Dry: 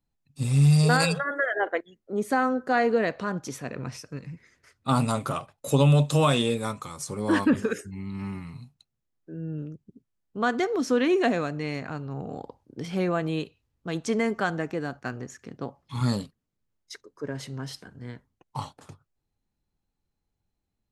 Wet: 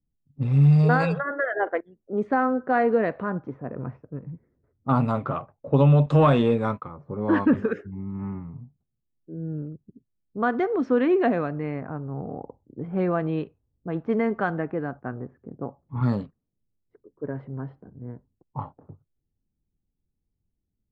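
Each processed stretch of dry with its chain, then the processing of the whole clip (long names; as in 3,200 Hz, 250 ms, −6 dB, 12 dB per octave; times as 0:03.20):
0:06.06–0:06.89: downward expander −36 dBFS + leveller curve on the samples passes 1
whole clip: low-pass filter 1,600 Hz 12 dB per octave; low-pass that shuts in the quiet parts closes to 350 Hz, open at −21 dBFS; level +2 dB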